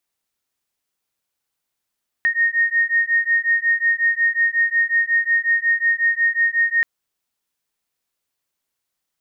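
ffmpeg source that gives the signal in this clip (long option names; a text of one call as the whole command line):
ffmpeg -f lavfi -i "aevalsrc='0.119*(sin(2*PI*1850*t)+sin(2*PI*1855.5*t))':duration=4.58:sample_rate=44100" out.wav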